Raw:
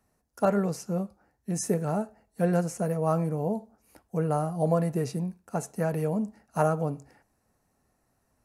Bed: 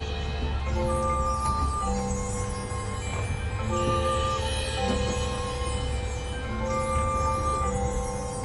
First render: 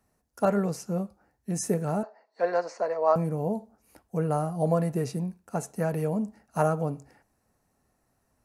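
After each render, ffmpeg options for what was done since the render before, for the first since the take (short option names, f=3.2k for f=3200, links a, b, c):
-filter_complex "[0:a]asettb=1/sr,asplit=3[a][b][c];[a]atrim=end=2.034[d];[b]atrim=start=2.03:end=3.16,asetpts=PTS-STARTPTS,afade=t=in:d=0.004:c=qsin,afade=t=out:st=1.126:d=0.004:c=qsin,highpass=f=350:w=0.5412,highpass=f=350:w=1.3066,equalizer=f=360:t=q:w=4:g=-3,equalizer=f=610:t=q:w=4:g=6,equalizer=f=1k:t=q:w=4:g=9,equalizer=f=1.9k:t=q:w=4:g=6,equalizer=f=3.1k:t=q:w=4:g=-7,equalizer=f=4.5k:t=q:w=4:g=9,lowpass=f=5.2k:w=0.5412,lowpass=f=5.2k:w=1.3066[e];[c]atrim=start=3.156[f];[d][e]acrossfade=d=0.004:c1=hsin:c2=qsin[g];[g][f]acrossfade=d=0.004:c1=qsin:c2=hsin"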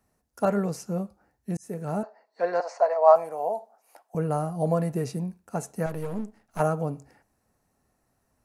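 -filter_complex "[0:a]asettb=1/sr,asplit=3[a][b][c];[a]atrim=end=2.604[d];[b]atrim=start=2.6:end=4.15,asetpts=PTS-STARTPTS,afade=t=in:d=0.004:c=qsin,afade=t=out:st=1.546:d=0.004:c=qsin,highpass=f=700:t=q:w=2.9[e];[c]atrim=start=4.146[f];[d][e]acrossfade=d=0.004:c1=hsin:c2=qsin[g];[g][f]acrossfade=d=0.004:c1=qsin:c2=hsin,asettb=1/sr,asplit=3[h][i][j];[h]atrim=end=5.864[k];[i]atrim=start=5.86:end=6.6,asetpts=PTS-STARTPTS,afade=t=in:d=0.004:c=qsin,afade=t=out:st=0.736:d=0.004:c=qsin,aeval=exprs='if(lt(val(0),0),0.251*val(0),val(0))':c=same[l];[j]atrim=start=6.596[m];[k][l]acrossfade=d=0.004:c1=hsin:c2=qsin[n];[n][m]acrossfade=d=0.004:c1=qsin:c2=hsin,asplit=2[o][p];[o]atrim=end=1.57,asetpts=PTS-STARTPTS,afade=t=out:st=1.566:d=0.004:c=hsin[q];[p]atrim=start=1.57,asetpts=PTS-STARTPTS,afade=t=in:d=0.41[r];[q][r]concat=n=2:v=0:a=1"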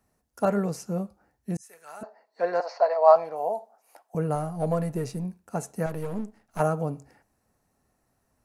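-filter_complex "[0:a]asplit=3[a][b][c];[a]afade=t=out:st=1.61:d=0.02[d];[b]highpass=1.4k,afade=t=in:st=1.61:d=0.02,afade=t=out:st=2.01:d=0.02[e];[c]afade=t=in:st=2.01:d=0.02[f];[d][e][f]amix=inputs=3:normalize=0,asettb=1/sr,asplit=3[g][h][i];[g]atrim=end=2.664[j];[h]atrim=start=2.66:end=3.36,asetpts=PTS-STARTPTS,afade=t=in:d=0.004:c=qsin,afade=t=out:st=0.696:d=0.004:c=qsin,highshelf=f=6.2k:t=q:w=3:g=-12[k];[i]atrim=start=3.356[l];[j][k]acrossfade=d=0.004:c1=hsin:c2=qsin[m];[m][l]acrossfade=d=0.004:c1=qsin:c2=hsin,asettb=1/sr,asplit=3[n][o][p];[n]atrim=end=4.354[q];[o]atrim=start=4.35:end=5.25,asetpts=PTS-STARTPTS,afade=t=in:d=0.004:c=qsin,afade=t=out:st=0.896:d=0.004:c=qsin,aeval=exprs='if(lt(val(0),0),0.708*val(0),val(0))':c=same[r];[p]atrim=start=5.246[s];[q][r]acrossfade=d=0.004:c1=hsin:c2=qsin[t];[t][s]acrossfade=d=0.004:c1=qsin:c2=hsin"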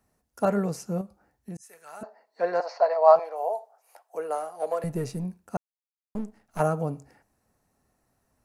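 -filter_complex "[0:a]asettb=1/sr,asplit=3[a][b][c];[a]atrim=end=1.014[d];[b]atrim=start=1.01:end=1.93,asetpts=PTS-STARTPTS,afade=t=in:d=0.004:c=qsin,afade=t=out:st=0.916:d=0.004:c=qsin,acompressor=threshold=-40dB:ratio=2:attack=3.2:release=140:knee=1:detection=peak[e];[c]atrim=start=1.926[f];[d][e]acrossfade=d=0.004:c1=hsin:c2=qsin[g];[g][f]acrossfade=d=0.004:c1=qsin:c2=hsin,asettb=1/sr,asplit=3[h][i][j];[h]atrim=end=3.194[k];[i]atrim=start=3.19:end=4.84,asetpts=PTS-STARTPTS,afade=t=in:d=0.004:c=qsin,afade=t=out:st=1.646:d=0.004:c=qsin,highpass=f=420:w=0.5412,highpass=f=420:w=1.3066[l];[j]atrim=start=4.836[m];[k][l]acrossfade=d=0.004:c1=hsin:c2=qsin[n];[n][m]acrossfade=d=0.004:c1=qsin:c2=hsin,asplit=3[o][p][q];[o]atrim=end=5.57,asetpts=PTS-STARTPTS,afade=t=out:st=5.566:d=0.004:c=hsin[r];[p]atrim=start=5.57:end=6.15,asetpts=PTS-STARTPTS,volume=0[s];[q]atrim=start=6.15,asetpts=PTS-STARTPTS,afade=t=in:d=0.004:c=hsin[t];[r][s][t]concat=n=3:v=0:a=1"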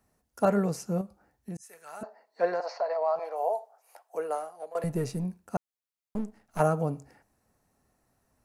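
-filter_complex "[0:a]asettb=1/sr,asplit=3[a][b][c];[a]atrim=end=2.484[d];[b]atrim=start=2.48:end=3.39,asetpts=PTS-STARTPTS,afade=t=in:d=0.004:c=qsin,afade=t=out:st=0.906:d=0.004:c=qsin,acompressor=threshold=-27dB:ratio=3:attack=3.2:release=140:knee=1:detection=peak[e];[c]atrim=start=3.386[f];[d][e]acrossfade=d=0.004:c1=hsin:c2=qsin[g];[g][f]acrossfade=d=0.004:c1=qsin:c2=hsin,asplit=2[h][i];[h]atrim=end=4.75,asetpts=PTS-STARTPTS,afade=t=out:st=4.22:d=0.53:silence=0.105925[j];[i]atrim=start=4.75,asetpts=PTS-STARTPTS,afade=t=in:d=0.004:c=hsin:silence=0.105925[k];[j][k]concat=n=2:v=0:a=1"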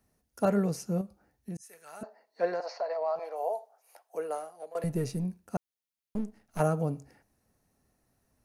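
-af "equalizer=f=1k:w=0.81:g=-5,bandreject=f=7.6k:w=10"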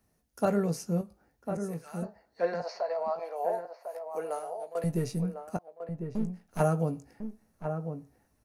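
-filter_complex "[0:a]asplit=2[a][b];[b]adelay=18,volume=-9.5dB[c];[a][c]amix=inputs=2:normalize=0,asplit=2[d][e];[e]adelay=1050,volume=-7dB,highshelf=f=4k:g=-23.6[f];[d][f]amix=inputs=2:normalize=0"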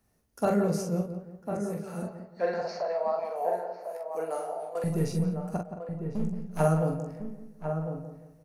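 -filter_complex "[0:a]asplit=2[a][b];[b]adelay=44,volume=-4dB[c];[a][c]amix=inputs=2:normalize=0,asplit=2[d][e];[e]adelay=173,lowpass=f=1.7k:p=1,volume=-8.5dB,asplit=2[f][g];[g]adelay=173,lowpass=f=1.7k:p=1,volume=0.38,asplit=2[h][i];[i]adelay=173,lowpass=f=1.7k:p=1,volume=0.38,asplit=2[j][k];[k]adelay=173,lowpass=f=1.7k:p=1,volume=0.38[l];[f][h][j][l]amix=inputs=4:normalize=0[m];[d][m]amix=inputs=2:normalize=0"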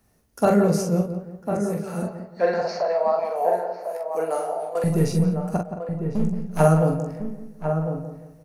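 -af "volume=7.5dB"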